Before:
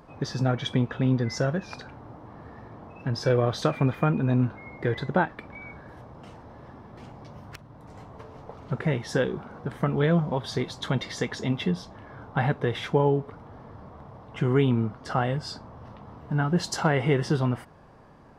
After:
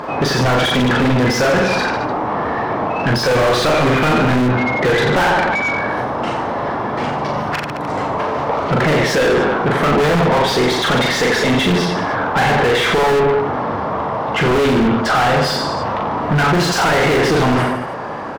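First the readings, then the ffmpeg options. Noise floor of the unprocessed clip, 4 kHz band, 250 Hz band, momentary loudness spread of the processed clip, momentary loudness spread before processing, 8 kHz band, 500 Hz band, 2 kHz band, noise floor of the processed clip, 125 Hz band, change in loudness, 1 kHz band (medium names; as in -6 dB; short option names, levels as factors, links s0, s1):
-49 dBFS, +17.0 dB, +10.5 dB, 7 LU, 22 LU, +15.0 dB, +13.0 dB, +18.0 dB, -23 dBFS, +6.5 dB, +11.0 dB, +17.5 dB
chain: -filter_complex "[0:a]aecho=1:1:40|88|145.6|214.7|297.7:0.631|0.398|0.251|0.158|0.1,asplit=2[s0][s1];[s1]highpass=f=720:p=1,volume=70.8,asoftclip=type=tanh:threshold=0.531[s2];[s0][s2]amix=inputs=2:normalize=0,lowpass=f=2000:p=1,volume=0.501,aeval=exprs='0.282*(abs(mod(val(0)/0.282+3,4)-2)-1)':c=same"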